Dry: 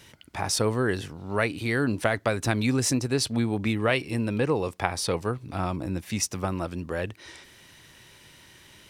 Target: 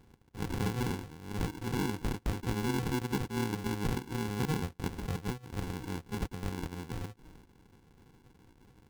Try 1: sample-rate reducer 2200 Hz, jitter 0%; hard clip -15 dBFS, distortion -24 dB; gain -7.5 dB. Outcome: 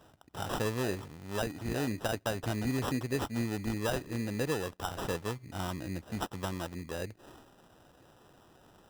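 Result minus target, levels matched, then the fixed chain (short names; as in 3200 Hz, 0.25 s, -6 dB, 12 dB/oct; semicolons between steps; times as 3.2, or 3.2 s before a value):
sample-rate reducer: distortion -13 dB
sample-rate reducer 620 Hz, jitter 0%; hard clip -15 dBFS, distortion -24 dB; gain -7.5 dB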